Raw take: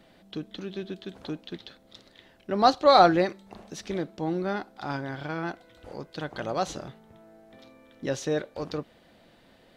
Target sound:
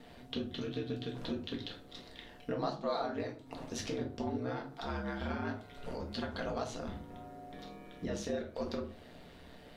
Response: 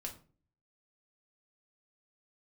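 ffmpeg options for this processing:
-filter_complex "[0:a]acompressor=threshold=-38dB:ratio=6,aeval=exprs='val(0)*sin(2*PI*64*n/s)':channel_layout=same[link_01];[1:a]atrim=start_sample=2205[link_02];[link_01][link_02]afir=irnorm=-1:irlink=0,volume=8dB"

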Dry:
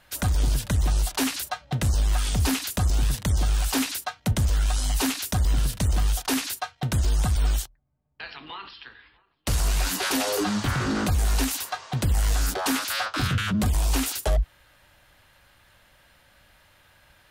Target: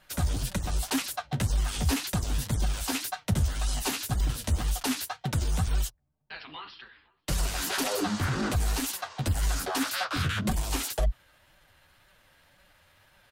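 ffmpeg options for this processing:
ffmpeg -i in.wav -af "atempo=1.3,flanger=delay=5.1:depth=8.4:regen=-1:speed=1.9:shape=sinusoidal" out.wav

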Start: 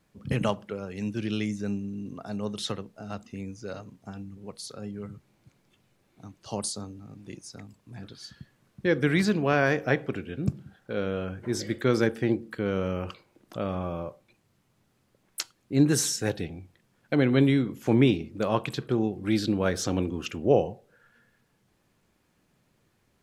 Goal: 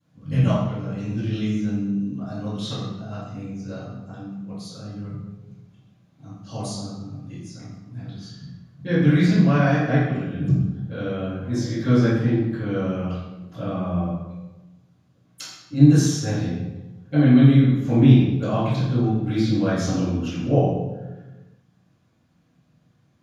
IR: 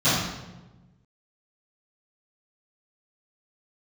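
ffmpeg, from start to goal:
-filter_complex "[1:a]atrim=start_sample=2205[link_01];[0:a][link_01]afir=irnorm=-1:irlink=0,volume=-17.5dB"

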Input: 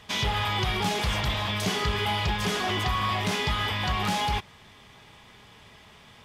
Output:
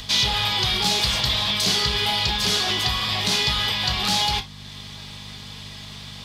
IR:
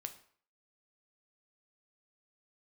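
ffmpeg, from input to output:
-filter_complex "[0:a]equalizer=frequency=4200:width=1.5:gain=13.5,bandreject=frequency=50:width_type=h:width=6,bandreject=frequency=100:width_type=h:width=6,asplit=2[link_01][link_02];[link_02]acompressor=mode=upward:threshold=-27dB:ratio=2.5,volume=-1dB[link_03];[link_01][link_03]amix=inputs=2:normalize=0,aeval=exprs='val(0)+0.0251*(sin(2*PI*50*n/s)+sin(2*PI*2*50*n/s)/2+sin(2*PI*3*50*n/s)/3+sin(2*PI*4*50*n/s)/4+sin(2*PI*5*50*n/s)/5)':channel_layout=same,acrossover=split=180|5200[link_04][link_05][link_06];[link_06]acontrast=83[link_07];[link_04][link_05][link_07]amix=inputs=3:normalize=0[link_08];[1:a]atrim=start_sample=2205,afade=type=out:start_time=0.15:duration=0.01,atrim=end_sample=7056,asetrate=57330,aresample=44100[link_09];[link_08][link_09]afir=irnorm=-1:irlink=0"

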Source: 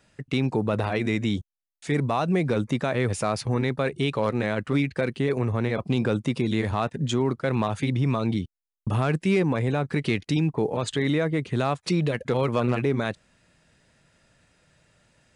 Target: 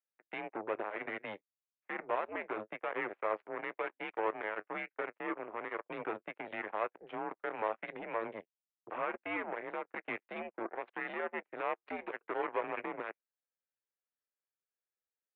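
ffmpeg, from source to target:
ffmpeg -i in.wav -af "flanger=delay=8.2:depth=1.9:regen=68:speed=1:shape=triangular,aeval=exprs='0.178*(cos(1*acos(clip(val(0)/0.178,-1,1)))-cos(1*PI/2))+0.0141*(cos(3*acos(clip(val(0)/0.178,-1,1)))-cos(3*PI/2))+0.02*(cos(7*acos(clip(val(0)/0.178,-1,1)))-cos(7*PI/2))':channel_layout=same,highpass=frequency=510:width_type=q:width=0.5412,highpass=frequency=510:width_type=q:width=1.307,lowpass=frequency=2500:width_type=q:width=0.5176,lowpass=frequency=2500:width_type=q:width=0.7071,lowpass=frequency=2500:width_type=q:width=1.932,afreqshift=-94,volume=-2dB" out.wav

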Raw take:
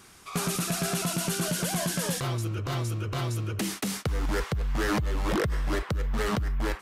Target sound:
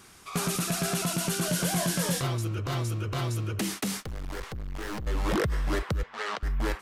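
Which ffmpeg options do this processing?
ffmpeg -i in.wav -filter_complex "[0:a]asettb=1/sr,asplit=3[link_01][link_02][link_03];[link_01]atrim=end=1.484[link_04];[link_02]atrim=start=1.48:end=2.27,asetpts=PTS-STARTPTS,afade=type=in:duration=0.004:curve=qsin,afade=type=out:start_time=0.786:duration=0.004:curve=qsin,asplit=2[link_05][link_06];[link_06]adelay=23,volume=-6dB[link_07];[link_05][link_07]amix=inputs=2:normalize=0,atrim=end_sample=34839[link_08];[link_03]atrim=start=2.266[link_09];[link_04][link_08]acrossfade=duration=0.004:curve1=hsin:curve2=qsin[link_10];[link_10][link_09]acrossfade=duration=0.004:curve1=qsin:curve2=hsin,asettb=1/sr,asplit=3[link_11][link_12][link_13];[link_11]atrim=end=4.004[link_14];[link_12]atrim=start=4:end=5.07,asetpts=PTS-STARTPTS,afade=type=in:duration=0.004:curve=qsin,afade=type=out:start_time=1.066:duration=0.004:curve=qsin,aeval=exprs='(tanh(50.1*val(0)+0.65)-tanh(0.65))/50.1':channel_layout=same[link_15];[link_13]atrim=start=5.066[link_16];[link_14][link_15]acrossfade=duration=0.004:curve1=hsin:curve2=qsin[link_17];[link_17][link_16]acrossfade=duration=0.004:curve1=qsin:curve2=hsin,asettb=1/sr,asplit=3[link_18][link_19][link_20];[link_18]atrim=end=6.034[link_21];[link_19]atrim=start=6.03:end=6.43,asetpts=PTS-STARTPTS,afade=type=in:duration=0.004:curve=qsin,afade=type=out:start_time=0.396:duration=0.004:curve=qsin,highpass=670,lowpass=5300[link_22];[link_20]atrim=start=6.426[link_23];[link_21][link_22]acrossfade=duration=0.004:curve1=hsin:curve2=qsin[link_24];[link_24][link_23]acrossfade=duration=0.004:curve1=qsin:curve2=hsin" out.wav

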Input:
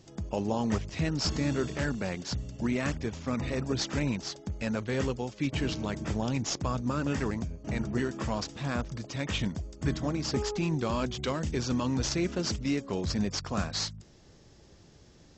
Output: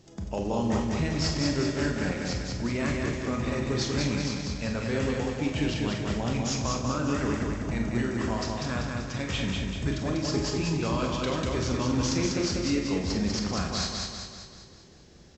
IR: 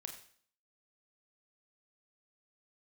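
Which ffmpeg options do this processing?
-filter_complex "[0:a]aecho=1:1:194|388|582|776|970|1164|1358:0.708|0.368|0.191|0.0995|0.0518|0.0269|0.014[link_01];[1:a]atrim=start_sample=2205[link_02];[link_01][link_02]afir=irnorm=-1:irlink=0,volume=4.5dB"

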